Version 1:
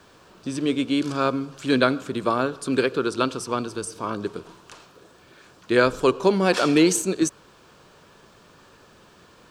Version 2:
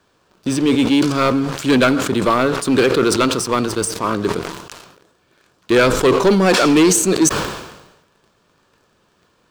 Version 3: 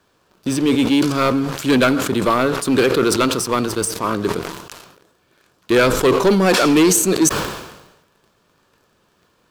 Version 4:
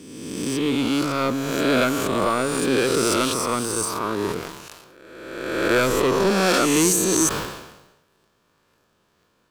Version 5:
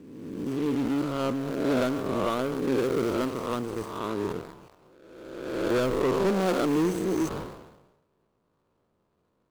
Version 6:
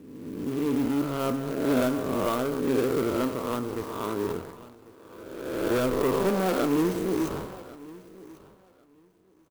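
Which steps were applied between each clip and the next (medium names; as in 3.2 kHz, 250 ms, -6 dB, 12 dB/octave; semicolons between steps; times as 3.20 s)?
waveshaping leveller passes 3; decay stretcher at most 58 dB/s; trim -2 dB
peaking EQ 12 kHz +8.5 dB 0.31 oct; trim -1 dB
reverse spectral sustain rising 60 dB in 1.48 s; trim -8 dB
median filter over 25 samples; trim -4.5 dB
feedback delay 1095 ms, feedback 18%, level -20 dB; reverberation RT60 0.75 s, pre-delay 6 ms, DRR 10 dB; sampling jitter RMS 0.029 ms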